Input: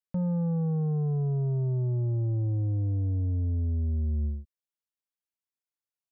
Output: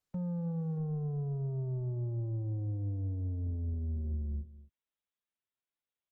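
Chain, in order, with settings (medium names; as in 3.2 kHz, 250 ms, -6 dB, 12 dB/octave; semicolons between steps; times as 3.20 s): 1.51–4.14 s: bass shelf 250 Hz -2 dB; peak limiter -33 dBFS, peak gain reduction 7.5 dB; delay 244 ms -17 dB; Opus 16 kbps 48 kHz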